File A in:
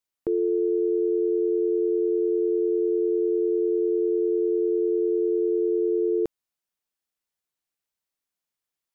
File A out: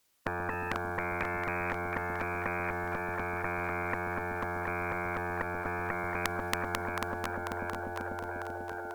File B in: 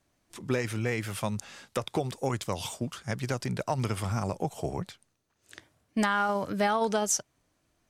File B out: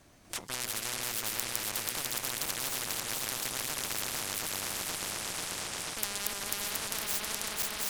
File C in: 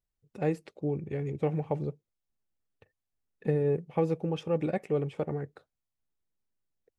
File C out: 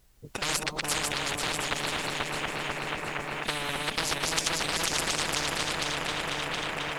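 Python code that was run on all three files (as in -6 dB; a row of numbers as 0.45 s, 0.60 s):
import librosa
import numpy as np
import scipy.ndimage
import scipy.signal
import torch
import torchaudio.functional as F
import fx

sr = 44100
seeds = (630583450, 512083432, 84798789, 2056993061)

y = fx.reverse_delay_fb(x, sr, ms=246, feedback_pct=71, wet_db=-1.0)
y = fx.cheby_harmonics(y, sr, harmonics=(5, 6), levels_db=(-33, -8), full_scale_db=-10.0)
y = fx.echo_split(y, sr, split_hz=520.0, low_ms=134, high_ms=720, feedback_pct=52, wet_db=-10.5)
y = fx.spectral_comp(y, sr, ratio=10.0)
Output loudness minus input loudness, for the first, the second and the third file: -10.5 LU, -2.0 LU, +2.5 LU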